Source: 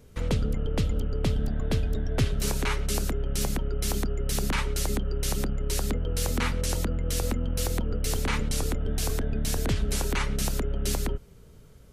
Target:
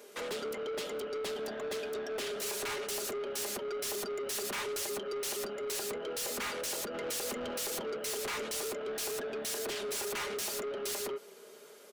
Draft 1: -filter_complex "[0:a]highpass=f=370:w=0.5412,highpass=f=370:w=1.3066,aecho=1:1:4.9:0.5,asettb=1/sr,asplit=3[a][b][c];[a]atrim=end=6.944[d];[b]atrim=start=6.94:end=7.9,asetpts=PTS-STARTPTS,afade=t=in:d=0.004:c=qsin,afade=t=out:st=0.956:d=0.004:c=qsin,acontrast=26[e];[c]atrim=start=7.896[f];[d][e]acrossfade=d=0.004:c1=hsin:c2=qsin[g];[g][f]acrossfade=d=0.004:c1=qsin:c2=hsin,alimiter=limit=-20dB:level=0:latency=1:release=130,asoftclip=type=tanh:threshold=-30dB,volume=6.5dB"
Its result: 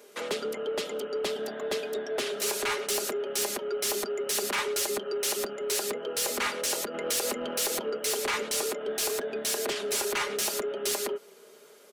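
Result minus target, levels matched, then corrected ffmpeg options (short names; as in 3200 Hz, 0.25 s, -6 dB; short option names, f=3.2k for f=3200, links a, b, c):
soft clip: distortion -7 dB
-filter_complex "[0:a]highpass=f=370:w=0.5412,highpass=f=370:w=1.3066,aecho=1:1:4.9:0.5,asettb=1/sr,asplit=3[a][b][c];[a]atrim=end=6.944[d];[b]atrim=start=6.94:end=7.9,asetpts=PTS-STARTPTS,afade=t=in:d=0.004:c=qsin,afade=t=out:st=0.956:d=0.004:c=qsin,acontrast=26[e];[c]atrim=start=7.896[f];[d][e]acrossfade=d=0.004:c1=hsin:c2=qsin[g];[g][f]acrossfade=d=0.004:c1=qsin:c2=hsin,alimiter=limit=-20dB:level=0:latency=1:release=130,asoftclip=type=tanh:threshold=-41dB,volume=6.5dB"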